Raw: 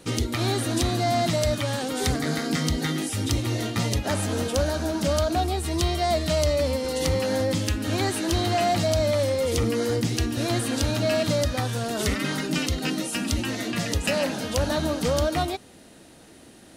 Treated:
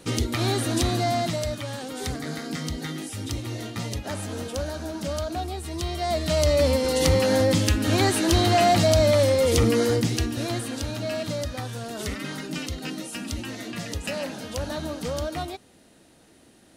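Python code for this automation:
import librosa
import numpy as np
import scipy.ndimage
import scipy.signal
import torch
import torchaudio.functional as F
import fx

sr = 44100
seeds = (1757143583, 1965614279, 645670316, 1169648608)

y = fx.gain(x, sr, db=fx.line((0.97, 0.5), (1.55, -6.0), (5.81, -6.0), (6.65, 4.0), (9.77, 4.0), (10.79, -6.0)))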